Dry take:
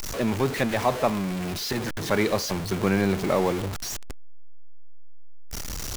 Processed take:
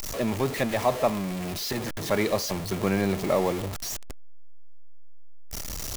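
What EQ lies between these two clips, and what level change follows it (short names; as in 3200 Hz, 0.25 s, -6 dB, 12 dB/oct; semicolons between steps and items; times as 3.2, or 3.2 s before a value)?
bell 620 Hz +4 dB 0.38 oct; high shelf 8100 Hz +5 dB; notch 1500 Hz, Q 14; -2.5 dB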